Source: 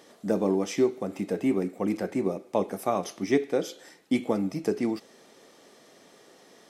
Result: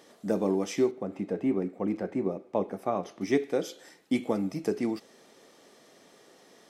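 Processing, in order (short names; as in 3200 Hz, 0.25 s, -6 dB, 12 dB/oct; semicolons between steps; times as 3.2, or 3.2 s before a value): 0.91–3.21 LPF 1600 Hz 6 dB/oct; gain -2 dB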